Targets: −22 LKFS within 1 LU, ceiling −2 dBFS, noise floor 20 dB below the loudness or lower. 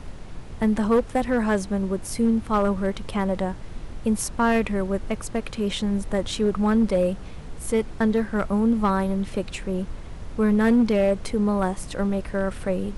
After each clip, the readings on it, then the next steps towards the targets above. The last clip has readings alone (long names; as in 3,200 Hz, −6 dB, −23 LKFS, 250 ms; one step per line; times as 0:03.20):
share of clipped samples 0.6%; peaks flattened at −13.5 dBFS; background noise floor −38 dBFS; target noise floor −44 dBFS; integrated loudness −24.0 LKFS; sample peak −13.5 dBFS; target loudness −22.0 LKFS
→ clipped peaks rebuilt −13.5 dBFS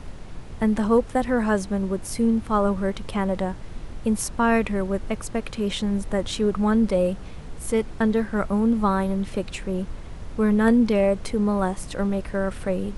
share of clipped samples 0.0%; background noise floor −38 dBFS; target noise floor −44 dBFS
→ noise reduction from a noise print 6 dB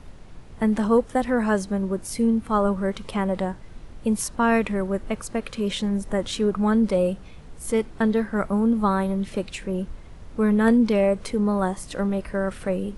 background noise floor −43 dBFS; target noise floor −44 dBFS
→ noise reduction from a noise print 6 dB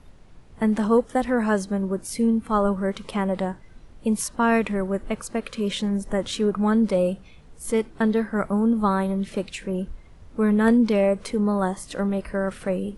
background noise floor −48 dBFS; integrated loudness −24.0 LKFS; sample peak −6.0 dBFS; target loudness −22.0 LKFS
→ level +2 dB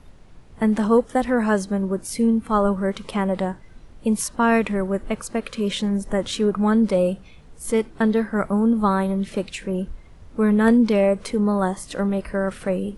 integrated loudness −22.0 LKFS; sample peak −4.0 dBFS; background noise floor −46 dBFS